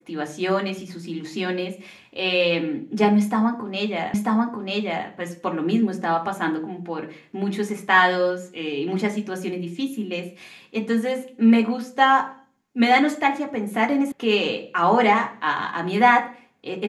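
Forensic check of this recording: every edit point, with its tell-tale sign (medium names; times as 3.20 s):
4.14 s: repeat of the last 0.94 s
14.12 s: sound stops dead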